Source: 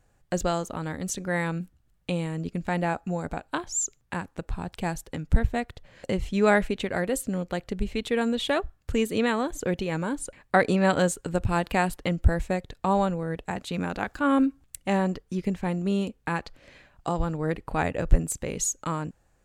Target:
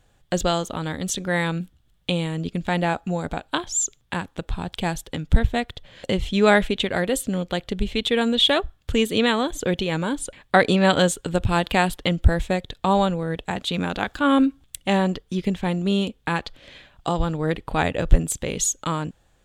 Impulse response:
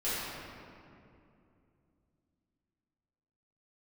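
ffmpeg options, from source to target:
-af "equalizer=frequency=3400:width_type=o:width=0.47:gain=12,volume=4dB"

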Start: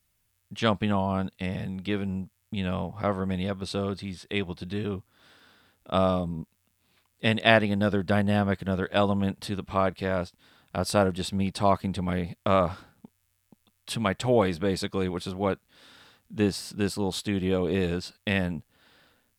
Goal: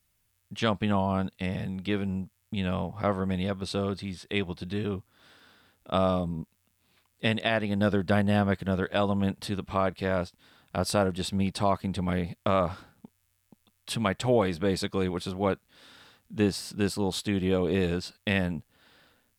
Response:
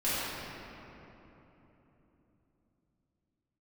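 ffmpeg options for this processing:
-af "alimiter=limit=-13dB:level=0:latency=1:release=283"

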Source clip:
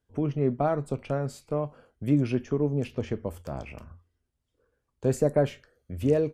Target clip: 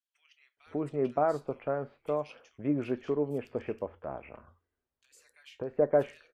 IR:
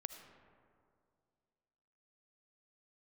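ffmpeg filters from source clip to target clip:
-filter_complex "[0:a]bass=frequency=250:gain=-14,treble=frequency=4000:gain=-13,asplit=3[link_01][link_02][link_03];[link_01]afade=type=out:start_time=3.59:duration=0.02[link_04];[link_02]acompressor=threshold=-36dB:ratio=3,afade=type=in:start_time=3.59:duration=0.02,afade=type=out:start_time=5.2:duration=0.02[link_05];[link_03]afade=type=in:start_time=5.2:duration=0.02[link_06];[link_04][link_05][link_06]amix=inputs=3:normalize=0,acrossover=split=2600[link_07][link_08];[link_07]adelay=570[link_09];[link_09][link_08]amix=inputs=2:normalize=0"

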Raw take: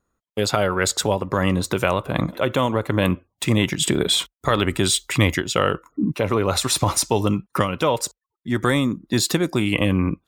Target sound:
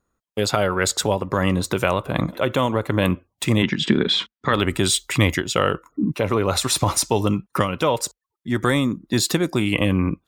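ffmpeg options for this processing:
ffmpeg -i in.wav -filter_complex "[0:a]asplit=3[link_01][link_02][link_03];[link_01]afade=type=out:start_time=3.62:duration=0.02[link_04];[link_02]highpass=110,equalizer=frequency=220:width_type=q:width=4:gain=10,equalizer=frequency=650:width_type=q:width=4:gain=-9,equalizer=frequency=1700:width_type=q:width=4:gain=5,lowpass=frequency=4900:width=0.5412,lowpass=frequency=4900:width=1.3066,afade=type=in:start_time=3.62:duration=0.02,afade=type=out:start_time=4.52:duration=0.02[link_05];[link_03]afade=type=in:start_time=4.52:duration=0.02[link_06];[link_04][link_05][link_06]amix=inputs=3:normalize=0" out.wav

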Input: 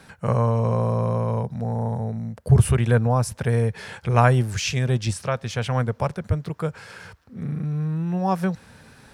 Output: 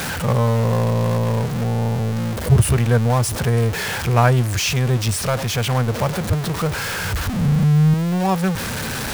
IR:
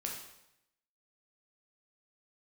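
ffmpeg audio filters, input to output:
-filter_complex "[0:a]aeval=exprs='val(0)+0.5*0.1*sgn(val(0))':channel_layout=same,asettb=1/sr,asplit=3[link_01][link_02][link_03];[link_01]atrim=end=6.574[link_04];[link_02]atrim=start=6.57:end=7.94,asetpts=PTS-STARTPTS,afade=type=in:duration=0.004:curve=qsin,afade=type=out:start_time=1.366:duration=0.004:curve=qsin,asubboost=boost=8:cutoff=180[link_05];[link_03]atrim=start=7.936[link_06];[link_04][link_05]acrossfade=duration=0.004:curve1=hsin:curve2=qsin[link_07];[link_07][link_06]acrossfade=duration=0.004:curve1=qsin:curve2=hsin"

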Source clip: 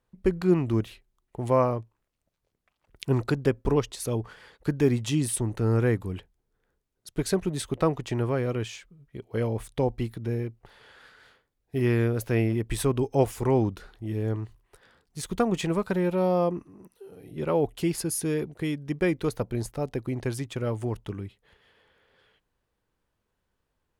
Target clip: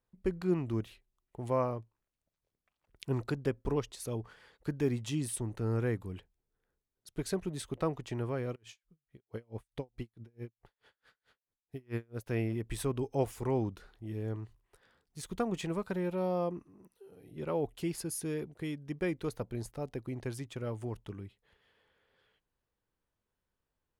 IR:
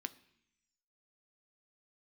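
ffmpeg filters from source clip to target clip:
-filter_complex "[0:a]asplit=3[link_01][link_02][link_03];[link_01]afade=type=out:start_time=8.54:duration=0.02[link_04];[link_02]aeval=exprs='val(0)*pow(10,-37*(0.5-0.5*cos(2*PI*4.6*n/s))/20)':channel_layout=same,afade=type=in:start_time=8.54:duration=0.02,afade=type=out:start_time=12.26:duration=0.02[link_05];[link_03]afade=type=in:start_time=12.26:duration=0.02[link_06];[link_04][link_05][link_06]amix=inputs=3:normalize=0,volume=-8.5dB"

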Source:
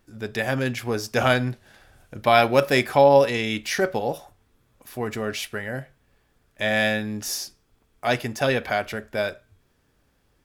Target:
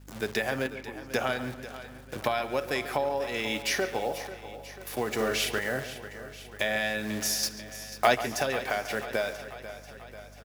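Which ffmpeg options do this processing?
ffmpeg -i in.wav -filter_complex "[0:a]acrusher=bits=8:dc=4:mix=0:aa=0.000001,bass=frequency=250:gain=-8,treble=frequency=4000:gain=0,acompressor=threshold=-29dB:ratio=12,asplit=3[link_01][link_02][link_03];[link_01]afade=type=out:start_time=0.66:duration=0.02[link_04];[link_02]asplit=3[link_05][link_06][link_07];[link_05]bandpass=frequency=300:width_type=q:width=8,volume=0dB[link_08];[link_06]bandpass=frequency=870:width_type=q:width=8,volume=-6dB[link_09];[link_07]bandpass=frequency=2240:width_type=q:width=8,volume=-9dB[link_10];[link_08][link_09][link_10]amix=inputs=3:normalize=0,afade=type=in:start_time=0.66:duration=0.02,afade=type=out:start_time=1.1:duration=0.02[link_11];[link_03]afade=type=in:start_time=1.1:duration=0.02[link_12];[link_04][link_11][link_12]amix=inputs=3:normalize=0,asettb=1/sr,asplit=3[link_13][link_14][link_15];[link_13]atrim=end=7.434[link_16];[link_14]atrim=start=7.43:end=8.15,asetpts=PTS-STARTPTS,afade=type=in:duration=0.004:curve=qsin,afade=type=out:start_time=0.716:duration=0.004:curve=qsin,acontrast=89[link_17];[link_15]atrim=start=8.146[link_18];[link_16][link_17]acrossfade=duration=0.004:curve1=hsin:curve2=qsin[link_19];[link_19][link_18]acrossfade=duration=0.004:curve1=qsin:curve2=hsin,highpass=frequency=100:width=0.5412,highpass=frequency=100:width=1.3066,asplit=2[link_20][link_21];[link_21]adelay=140,lowpass=frequency=4100:poles=1,volume=-12.5dB,asplit=2[link_22][link_23];[link_23]adelay=140,lowpass=frequency=4100:poles=1,volume=0.37,asplit=2[link_24][link_25];[link_25]adelay=140,lowpass=frequency=4100:poles=1,volume=0.37,asplit=2[link_26][link_27];[link_27]adelay=140,lowpass=frequency=4100:poles=1,volume=0.37[link_28];[link_22][link_24][link_26][link_28]amix=inputs=4:normalize=0[link_29];[link_20][link_29]amix=inputs=2:normalize=0,aeval=exprs='val(0)+0.00224*(sin(2*PI*50*n/s)+sin(2*PI*2*50*n/s)/2+sin(2*PI*3*50*n/s)/3+sin(2*PI*4*50*n/s)/4+sin(2*PI*5*50*n/s)/5)':channel_layout=same,asplit=3[link_30][link_31][link_32];[link_30]afade=type=out:start_time=5.18:duration=0.02[link_33];[link_31]asplit=2[link_34][link_35];[link_35]adelay=41,volume=-2dB[link_36];[link_34][link_36]amix=inputs=2:normalize=0,afade=type=in:start_time=5.18:duration=0.02,afade=type=out:start_time=5.58:duration=0.02[link_37];[link_32]afade=type=in:start_time=5.58:duration=0.02[link_38];[link_33][link_37][link_38]amix=inputs=3:normalize=0,asplit=2[link_39][link_40];[link_40]aecho=0:1:491|982|1473|1964|2455|2946:0.2|0.12|0.0718|0.0431|0.0259|0.0155[link_41];[link_39][link_41]amix=inputs=2:normalize=0,volume=3.5dB" out.wav

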